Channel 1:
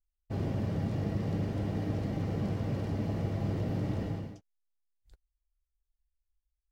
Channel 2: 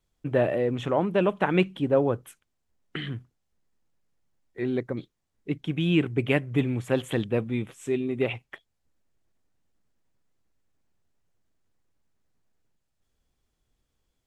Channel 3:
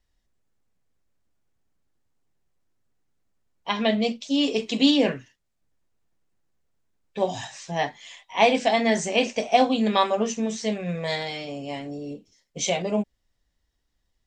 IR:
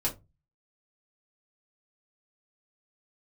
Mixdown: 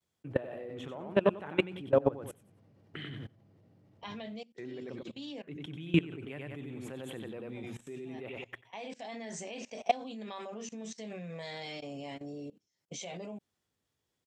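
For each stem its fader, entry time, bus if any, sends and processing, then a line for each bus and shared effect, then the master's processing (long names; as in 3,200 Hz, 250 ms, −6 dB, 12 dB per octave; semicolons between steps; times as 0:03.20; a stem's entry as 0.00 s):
−15.5 dB, 0.00 s, no send, no echo send, no processing
−1.5 dB, 0.00 s, no send, echo send −4 dB, mains-hum notches 60/120/180/240/300 Hz
−6.5 dB, 0.35 s, no send, no echo send, automatic ducking −13 dB, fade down 0.60 s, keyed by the second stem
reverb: not used
echo: repeating echo 92 ms, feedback 24%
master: high-pass filter 85 Hz 24 dB per octave; output level in coarse steps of 21 dB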